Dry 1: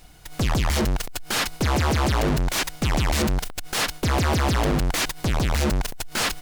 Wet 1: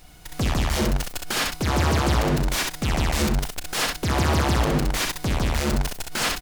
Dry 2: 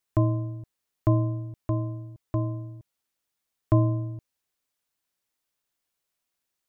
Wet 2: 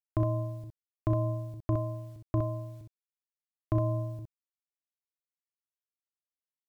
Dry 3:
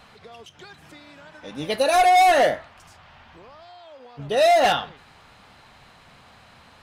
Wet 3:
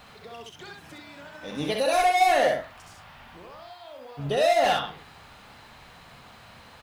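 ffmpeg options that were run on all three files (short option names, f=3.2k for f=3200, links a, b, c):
-filter_complex "[0:a]alimiter=limit=-18.5dB:level=0:latency=1:release=209,acrusher=bits=10:mix=0:aa=0.000001,asplit=2[a][b];[b]aecho=0:1:35|64:0.224|0.631[c];[a][c]amix=inputs=2:normalize=0"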